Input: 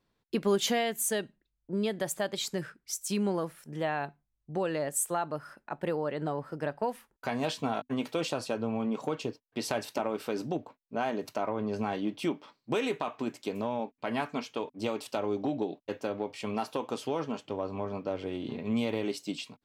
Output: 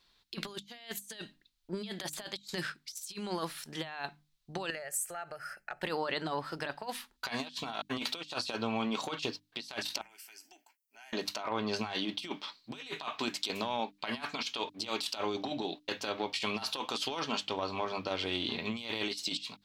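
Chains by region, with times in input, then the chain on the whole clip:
4.7–5.82 fixed phaser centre 1000 Hz, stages 6 + compressor 12:1, threshold -39 dBFS
10.01–11.13 differentiator + compressor, threshold -54 dBFS + fixed phaser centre 770 Hz, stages 8
whole clip: ten-band EQ 125 Hz -11 dB, 250 Hz -6 dB, 500 Hz -9 dB, 4000 Hz +12 dB; negative-ratio compressor -39 dBFS, ratio -0.5; notches 50/100/150/200/250/300 Hz; gain +3 dB

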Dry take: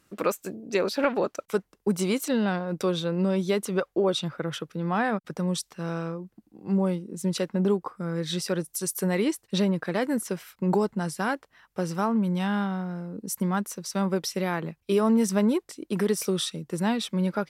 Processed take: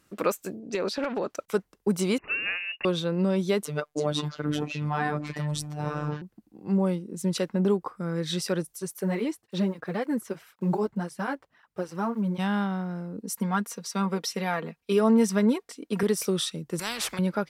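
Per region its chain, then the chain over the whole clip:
0.59–1.3 LPF 8300 Hz + compressor 12:1, threshold -23 dBFS + hard clip -20 dBFS
2.18–2.85 steep high-pass 360 Hz 72 dB/oct + inverted band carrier 3200 Hz
3.63–6.22 echoes that change speed 0.339 s, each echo -6 st, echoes 2, each echo -6 dB + robotiser 149 Hz
8.73–12.39 block floating point 7-bit + high shelf 3100 Hz -7.5 dB + tape flanging out of phase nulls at 1.9 Hz, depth 6.4 ms
13.21–16.03 HPF 250 Hz 6 dB/oct + high shelf 6800 Hz -5.5 dB + comb 4.3 ms, depth 69%
16.79–17.19 high shelf 8700 Hz -7.5 dB + spectral compressor 4:1
whole clip: dry

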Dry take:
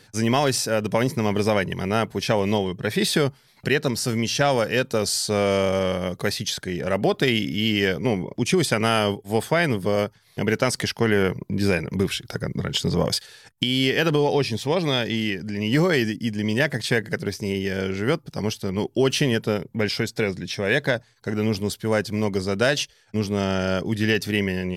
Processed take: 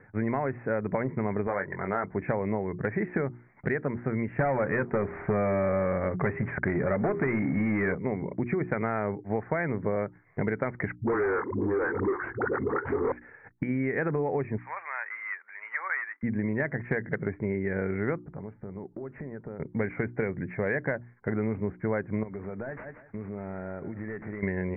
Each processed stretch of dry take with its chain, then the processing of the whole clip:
1.47–2.04 LPF 1800 Hz 24 dB/oct + tilt +3.5 dB/oct + doubler 21 ms -8 dB
4.39–7.95 notch 490 Hz, Q 9.6 + de-hum 80.61 Hz, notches 6 + sample leveller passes 3
10.95–13.12 fixed phaser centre 630 Hz, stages 6 + dispersion highs, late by 0.12 s, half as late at 310 Hz + overdrive pedal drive 23 dB, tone 2300 Hz, clips at -11.5 dBFS
14.58–16.23 CVSD 64 kbps + HPF 1100 Hz 24 dB/oct + high shelf 5300 Hz -6 dB
18.19–19.6 block floating point 7-bit + LPF 1400 Hz + compressor 8:1, threshold -35 dBFS
22.23–24.43 CVSD 32 kbps + feedback echo 0.173 s, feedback 15%, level -18.5 dB + compressor 10:1, threshold -32 dBFS
whole clip: steep low-pass 2200 Hz 96 dB/oct; notches 60/120/180/240/300/360 Hz; compressor, threshold -25 dBFS

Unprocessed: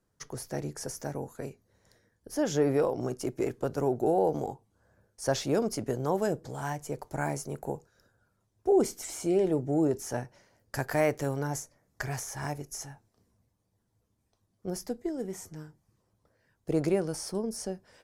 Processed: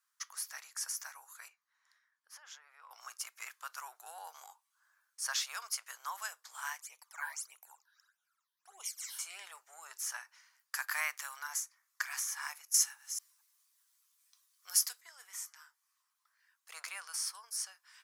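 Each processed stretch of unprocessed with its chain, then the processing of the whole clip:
1.48–2.91 LPF 1700 Hz 6 dB/oct + compressor 12:1, threshold -36 dBFS
6.8–9.19 phaser stages 12, 1.6 Hz, lowest notch 120–1600 Hz + high shelf 11000 Hz -4 dB
12.74–15.01 reverse delay 0.224 s, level -12 dB + high shelf 2400 Hz +12 dB
whole clip: elliptic high-pass 1100 Hz, stop band 80 dB; high shelf 11000 Hz +6.5 dB; gain +1.5 dB

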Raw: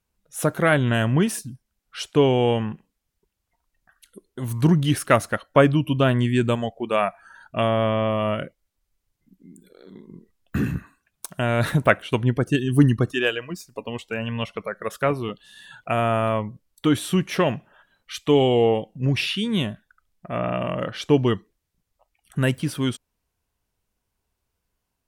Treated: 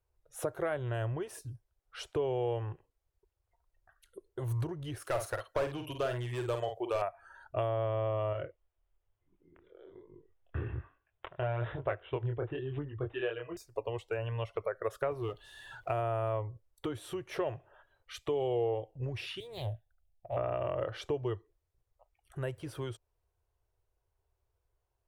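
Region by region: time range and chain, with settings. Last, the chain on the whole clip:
5.02–7.02 tilt +2.5 dB/oct + overloaded stage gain 20 dB + doubler 49 ms -7 dB
8.33–13.57 chorus 1.1 Hz, delay 20 ms, depth 6.8 ms + careless resampling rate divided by 6×, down none, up filtered
15.11–16.01 G.711 law mismatch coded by mu + bell 510 Hz -4 dB 0.24 oct
19.4–20.37 median filter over 3 samples + EQ curve 110 Hz 0 dB, 250 Hz -19 dB, 770 Hz 0 dB, 1200 Hz -24 dB, 2800 Hz -5 dB, 6900 Hz -6 dB, 13000 Hz +7 dB + Doppler distortion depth 0.34 ms
whole clip: compressor 6:1, threshold -26 dBFS; EQ curve 110 Hz 0 dB, 220 Hz -28 dB, 350 Hz -2 dB, 600 Hz -1 dB, 2400 Hz -11 dB, 5000 Hz -13 dB

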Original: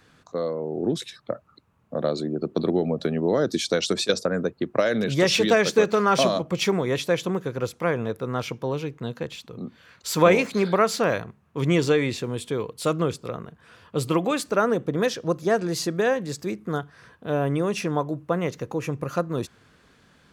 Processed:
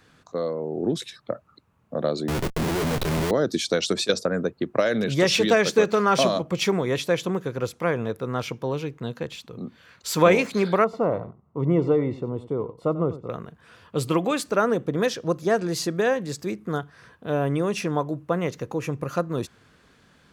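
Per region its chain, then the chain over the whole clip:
2.28–3.31 Schmitt trigger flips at -34.5 dBFS + doubler 25 ms -13.5 dB
10.84–13.3 polynomial smoothing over 65 samples + echo 93 ms -15.5 dB
whole clip: dry

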